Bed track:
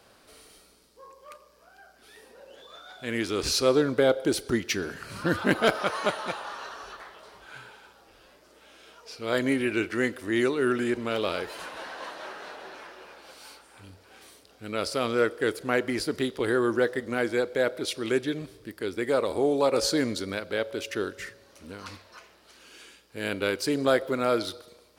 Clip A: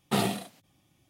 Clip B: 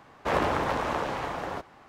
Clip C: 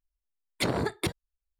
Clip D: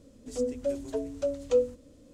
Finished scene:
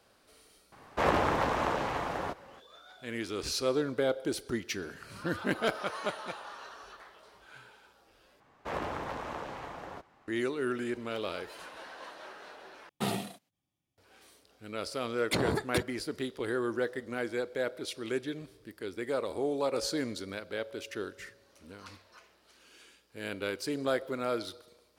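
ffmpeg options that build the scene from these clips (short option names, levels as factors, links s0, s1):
-filter_complex "[2:a]asplit=2[s0][s1];[0:a]volume=0.422[s2];[1:a]agate=range=0.2:threshold=0.00178:ratio=16:release=48:detection=peak[s3];[s2]asplit=3[s4][s5][s6];[s4]atrim=end=8.404[s7];[s1]atrim=end=1.88,asetpts=PTS-STARTPTS,volume=0.316[s8];[s5]atrim=start=10.276:end=12.894[s9];[s3]atrim=end=1.09,asetpts=PTS-STARTPTS,volume=0.501[s10];[s6]atrim=start=13.976[s11];[s0]atrim=end=1.88,asetpts=PTS-STARTPTS,volume=0.891,afade=t=in:d=0.004:c=hsin,afade=t=out:st=1.876:d=0.004:c=hsin,adelay=720[s12];[3:a]atrim=end=1.59,asetpts=PTS-STARTPTS,volume=0.794,afade=t=in:d=0.004:c=hsin,afade=t=out:st=1.586:d=0.004:c=hsin,adelay=14710[s13];[s7][s8]acrossfade=d=0.004:c1=hsin:c2=hsin[s14];[s14][s9]acrossfade=d=0.004:c1=hsin:c2=hsin[s15];[s15][s10]acrossfade=d=0.004:c1=hsin:c2=hsin[s16];[s16][s11]acrossfade=d=0.004:c1=hsin:c2=hsin[s17];[s17][s12][s13]amix=inputs=3:normalize=0"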